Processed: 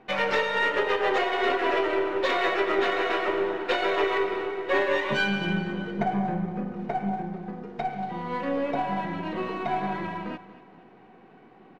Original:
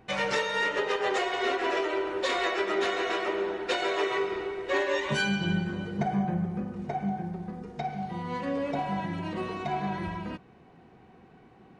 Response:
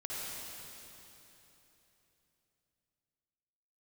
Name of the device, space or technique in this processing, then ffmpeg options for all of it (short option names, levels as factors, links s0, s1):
crystal radio: -af "highpass=210,lowpass=3300,aecho=1:1:234|468|702|936:0.15|0.0658|0.029|0.0127,aeval=exprs='if(lt(val(0),0),0.708*val(0),val(0))':c=same,volume=1.78"